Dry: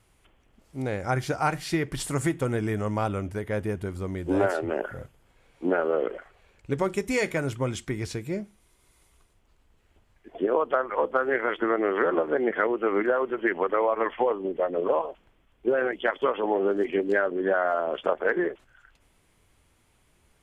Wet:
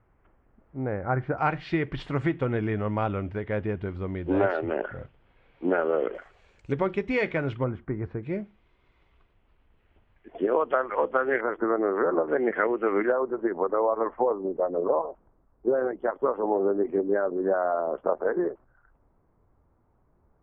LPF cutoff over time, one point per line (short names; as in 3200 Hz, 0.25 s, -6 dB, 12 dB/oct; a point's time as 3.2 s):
LPF 24 dB/oct
1700 Hz
from 1.38 s 3300 Hz
from 6.15 s 7500 Hz
from 6.72 s 3400 Hz
from 7.64 s 1500 Hz
from 8.23 s 3100 Hz
from 11.41 s 1400 Hz
from 12.28 s 2400 Hz
from 13.12 s 1200 Hz